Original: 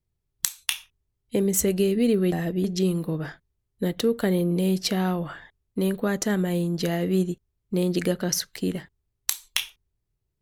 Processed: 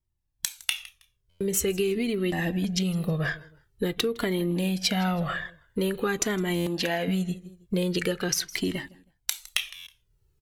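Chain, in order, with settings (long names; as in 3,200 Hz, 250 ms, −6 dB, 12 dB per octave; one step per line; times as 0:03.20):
0:06.58–0:07.08: bass and treble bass −12 dB, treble −5 dB
on a send: repeating echo 160 ms, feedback 29%, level −22.5 dB
on the sum: automatic gain control gain up to 13.5 dB
dynamic equaliser 2,500 Hz, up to +7 dB, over −38 dBFS, Q 0.95
downward compressor, threshold −18 dBFS, peak gain reduction 11 dB
buffer that repeats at 0:01.29/0:06.55/0:09.75, samples 512, times 9
flanger whose copies keep moving one way falling 0.46 Hz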